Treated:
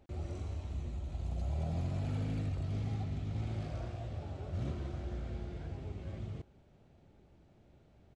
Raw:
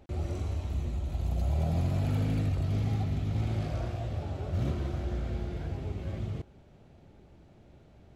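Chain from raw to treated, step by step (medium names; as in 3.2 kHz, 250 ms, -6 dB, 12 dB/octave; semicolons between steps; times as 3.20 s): resampled via 22.05 kHz; trim -7 dB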